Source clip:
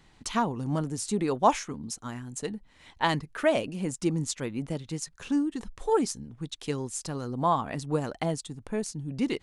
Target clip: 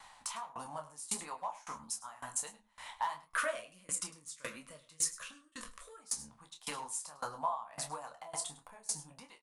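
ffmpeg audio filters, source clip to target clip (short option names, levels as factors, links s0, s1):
-filter_complex "[0:a]asettb=1/sr,asplit=3[s0][s1][s2];[s0]atrim=end=3.294[s3];[s1]atrim=start=3.29:end=5.99,asetpts=PTS-STARTPTS,afade=t=in:d=0.004:c=qsin,afade=t=out:st=2.696:d=0.004:c=qsin,asuperstop=centerf=820:order=4:qfactor=1.6[s4];[s2]atrim=start=5.986[s5];[s3][s4]acrossfade=d=0.004:c1=hsin:c2=qsin[s6];[s6][s5]acrossfade=d=0.004:c1=qsin:c2=hsin,acompressor=threshold=0.02:ratio=8,asoftclip=type=hard:threshold=0.0422,equalizer=f=100:t=o:w=0.67:g=-12,equalizer=f=400:t=o:w=0.67:g=-11,equalizer=f=1000:t=o:w=0.67:g=10,equalizer=f=10000:t=o:w=0.67:g=11,flanger=delay=7.6:depth=7.9:regen=83:speed=0.54:shape=triangular,lowshelf=f=430:t=q:w=1.5:g=-11,asplit=2[s7][s8];[s8]adelay=27,volume=0.473[s9];[s7][s9]amix=inputs=2:normalize=0,aecho=1:1:103:0.211,flanger=delay=9.9:depth=8.4:regen=-36:speed=1.5:shape=sinusoidal,aeval=exprs='val(0)*pow(10,-23*if(lt(mod(1.8*n/s,1),2*abs(1.8)/1000),1-mod(1.8*n/s,1)/(2*abs(1.8)/1000),(mod(1.8*n/s,1)-2*abs(1.8)/1000)/(1-2*abs(1.8)/1000))/20)':c=same,volume=4.73"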